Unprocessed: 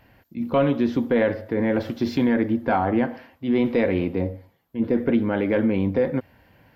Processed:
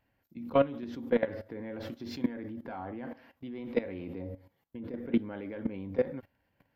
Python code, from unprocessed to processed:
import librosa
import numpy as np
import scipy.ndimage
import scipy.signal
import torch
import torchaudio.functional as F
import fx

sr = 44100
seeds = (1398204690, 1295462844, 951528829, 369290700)

y = fx.level_steps(x, sr, step_db=18)
y = fx.comb_fb(y, sr, f0_hz=280.0, decay_s=0.18, harmonics='all', damping=0.0, mix_pct=40)